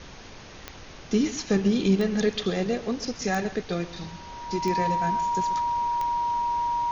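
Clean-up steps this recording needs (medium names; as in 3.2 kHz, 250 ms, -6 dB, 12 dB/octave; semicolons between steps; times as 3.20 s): de-click; band-stop 950 Hz, Q 30; noise print and reduce 28 dB; inverse comb 133 ms -15.5 dB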